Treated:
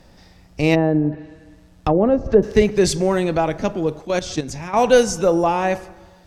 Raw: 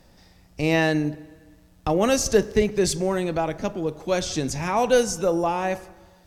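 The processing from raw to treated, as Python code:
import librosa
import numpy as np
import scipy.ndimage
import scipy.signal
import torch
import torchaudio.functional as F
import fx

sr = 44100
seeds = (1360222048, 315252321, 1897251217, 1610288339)

y = fx.env_lowpass_down(x, sr, base_hz=700.0, full_db=-18.0, at=(0.74, 2.42), fade=0.02)
y = fx.high_shelf(y, sr, hz=10000.0, db=-10.5)
y = fx.level_steps(y, sr, step_db=12, at=(3.99, 4.75), fade=0.02)
y = y * 10.0 ** (5.5 / 20.0)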